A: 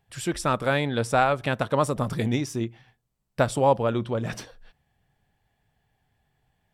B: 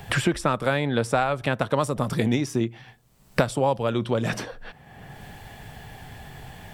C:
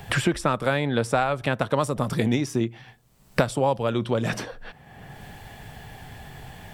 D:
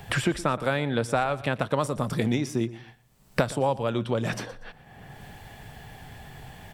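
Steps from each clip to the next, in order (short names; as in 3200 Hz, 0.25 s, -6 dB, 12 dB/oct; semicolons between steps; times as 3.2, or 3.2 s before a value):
three-band squash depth 100%
nothing audible
feedback echo 0.119 s, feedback 27%, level -18 dB; gain -2.5 dB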